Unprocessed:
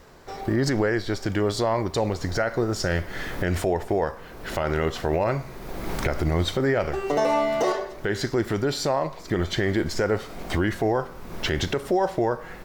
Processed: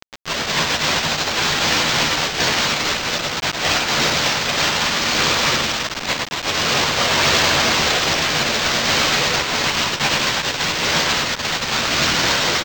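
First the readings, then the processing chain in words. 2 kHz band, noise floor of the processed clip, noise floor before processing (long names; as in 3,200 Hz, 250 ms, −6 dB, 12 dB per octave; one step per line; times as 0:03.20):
+13.5 dB, −27 dBFS, −41 dBFS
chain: phaser with its sweep stopped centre 1,300 Hz, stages 8
phases set to zero 307 Hz
echo with shifted repeats 231 ms, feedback 49%, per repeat −92 Hz, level −8.5 dB
fuzz pedal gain 49 dB, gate −52 dBFS
cochlear-implant simulation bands 1
multi-voice chorus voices 6, 0.57 Hz, delay 13 ms, depth 1.1 ms
single-tap delay 103 ms −6 dB
bit reduction 4 bits
linearly interpolated sample-rate reduction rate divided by 4×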